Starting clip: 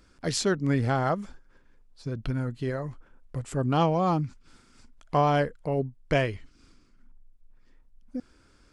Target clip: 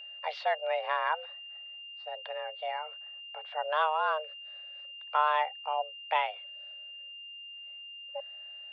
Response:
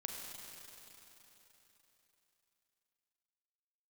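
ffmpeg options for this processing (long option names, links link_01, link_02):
-af "highpass=frequency=250:width_type=q:width=0.5412,highpass=frequency=250:width_type=q:width=1.307,lowpass=frequency=3400:width_type=q:width=0.5176,lowpass=frequency=3400:width_type=q:width=0.7071,lowpass=frequency=3400:width_type=q:width=1.932,afreqshift=310,aeval=exprs='val(0)+0.01*sin(2*PI*2800*n/s)':channel_layout=same,volume=-3dB"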